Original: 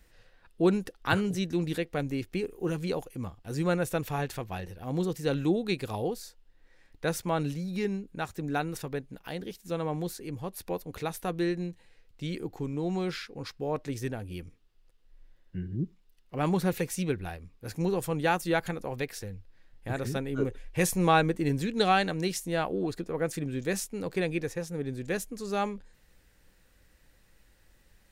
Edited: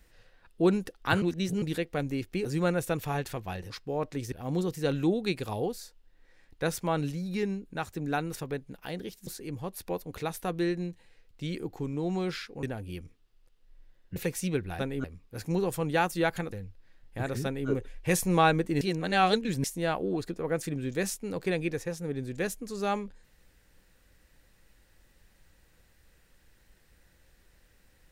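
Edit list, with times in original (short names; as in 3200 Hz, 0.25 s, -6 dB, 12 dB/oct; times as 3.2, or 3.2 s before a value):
1.22–1.62 reverse
2.45–3.49 cut
9.69–10.07 cut
13.43–14.05 move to 4.74
15.58–16.71 cut
18.82–19.22 cut
20.14–20.39 copy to 17.34
21.51–22.34 reverse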